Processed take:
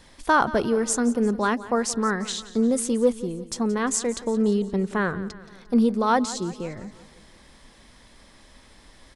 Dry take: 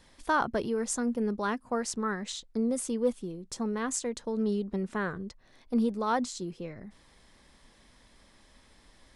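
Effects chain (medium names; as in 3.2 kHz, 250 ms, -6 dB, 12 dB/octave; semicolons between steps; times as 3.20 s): feedback delay 175 ms, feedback 54%, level -17 dB; trim +7.5 dB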